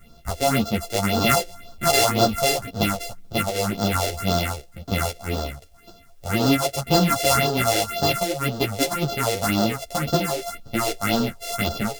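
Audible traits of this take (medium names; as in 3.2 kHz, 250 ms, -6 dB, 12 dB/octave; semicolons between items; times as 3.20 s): a buzz of ramps at a fixed pitch in blocks of 64 samples; phasing stages 4, 1.9 Hz, lowest notch 180–2200 Hz; a quantiser's noise floor 12-bit, dither triangular; a shimmering, thickened sound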